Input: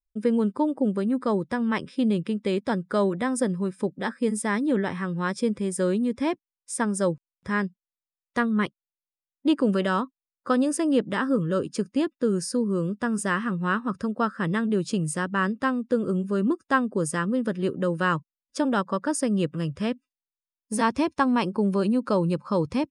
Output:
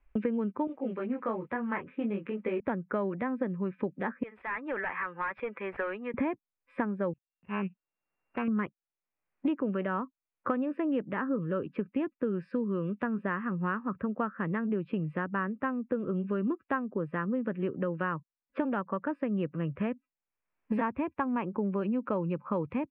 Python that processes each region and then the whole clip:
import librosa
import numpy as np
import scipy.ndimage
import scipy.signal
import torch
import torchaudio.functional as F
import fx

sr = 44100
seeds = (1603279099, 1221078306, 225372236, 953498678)

y = fx.chain(x, sr, fx.low_shelf(hz=270.0, db=-11.0),
    fx.mod_noise(seeds[0], snr_db=32),
    fx.detune_double(cents=17), at=(0.67, 2.6))
y = fx.chain(y, sr, fx.highpass(hz=1100.0, slope=12),
    fx.clip_hard(threshold_db=-33.5), at=(4.23, 6.14))
y = fx.chain(y, sr, fx.sample_sort(block=16),
    fx.lowpass(hz=2400.0, slope=6),
    fx.auto_swell(attack_ms=285.0), at=(7.13, 8.48))
y = scipy.signal.sosfilt(scipy.signal.ellip(4, 1.0, 60, 2500.0, 'lowpass', fs=sr, output='sos'), y)
y = fx.band_squash(y, sr, depth_pct=100)
y = F.gain(torch.from_numpy(y), -6.5).numpy()